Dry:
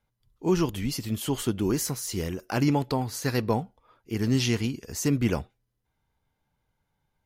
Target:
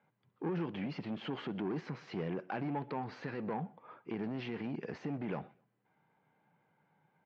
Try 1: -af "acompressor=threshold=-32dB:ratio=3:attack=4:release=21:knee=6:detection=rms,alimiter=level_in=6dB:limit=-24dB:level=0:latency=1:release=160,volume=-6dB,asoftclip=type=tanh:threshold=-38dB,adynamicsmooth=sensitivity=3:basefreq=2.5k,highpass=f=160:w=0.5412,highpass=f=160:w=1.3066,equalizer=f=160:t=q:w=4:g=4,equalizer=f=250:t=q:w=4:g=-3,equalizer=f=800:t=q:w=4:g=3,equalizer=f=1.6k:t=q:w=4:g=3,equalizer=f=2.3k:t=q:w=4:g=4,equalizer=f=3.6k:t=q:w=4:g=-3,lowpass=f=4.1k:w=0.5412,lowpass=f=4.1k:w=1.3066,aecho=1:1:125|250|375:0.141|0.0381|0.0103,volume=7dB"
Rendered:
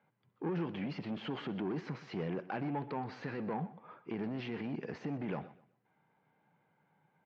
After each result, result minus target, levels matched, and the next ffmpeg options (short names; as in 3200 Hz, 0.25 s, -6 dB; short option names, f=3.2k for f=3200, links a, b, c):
compressor: peak gain reduction +10.5 dB; echo-to-direct +8 dB
-af "alimiter=level_in=6dB:limit=-24dB:level=0:latency=1:release=160,volume=-6dB,asoftclip=type=tanh:threshold=-38dB,adynamicsmooth=sensitivity=3:basefreq=2.5k,highpass=f=160:w=0.5412,highpass=f=160:w=1.3066,equalizer=f=160:t=q:w=4:g=4,equalizer=f=250:t=q:w=4:g=-3,equalizer=f=800:t=q:w=4:g=3,equalizer=f=1.6k:t=q:w=4:g=3,equalizer=f=2.3k:t=q:w=4:g=4,equalizer=f=3.6k:t=q:w=4:g=-3,lowpass=f=4.1k:w=0.5412,lowpass=f=4.1k:w=1.3066,aecho=1:1:125|250|375:0.141|0.0381|0.0103,volume=7dB"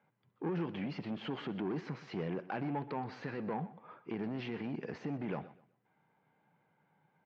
echo-to-direct +8 dB
-af "alimiter=level_in=6dB:limit=-24dB:level=0:latency=1:release=160,volume=-6dB,asoftclip=type=tanh:threshold=-38dB,adynamicsmooth=sensitivity=3:basefreq=2.5k,highpass=f=160:w=0.5412,highpass=f=160:w=1.3066,equalizer=f=160:t=q:w=4:g=4,equalizer=f=250:t=q:w=4:g=-3,equalizer=f=800:t=q:w=4:g=3,equalizer=f=1.6k:t=q:w=4:g=3,equalizer=f=2.3k:t=q:w=4:g=4,equalizer=f=3.6k:t=q:w=4:g=-3,lowpass=f=4.1k:w=0.5412,lowpass=f=4.1k:w=1.3066,aecho=1:1:125|250:0.0562|0.0152,volume=7dB"